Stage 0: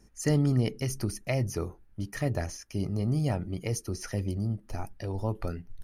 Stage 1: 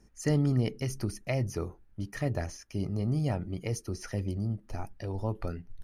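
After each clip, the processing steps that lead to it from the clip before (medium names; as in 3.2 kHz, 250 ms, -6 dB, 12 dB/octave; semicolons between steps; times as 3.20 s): treble shelf 7.3 kHz -6.5 dB; trim -1.5 dB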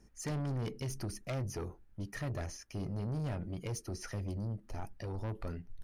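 saturation -31.5 dBFS, distortion -8 dB; trim -1.5 dB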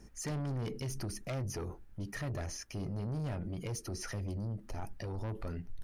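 peak limiter -40.5 dBFS, peak gain reduction 7.5 dB; trim +7 dB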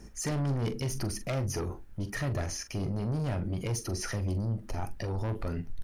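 doubling 43 ms -11.5 dB; trim +6 dB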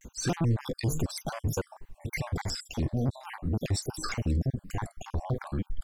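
random holes in the spectrogram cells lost 55%; vibrato with a chosen wave square 3.4 Hz, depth 250 cents; trim +4.5 dB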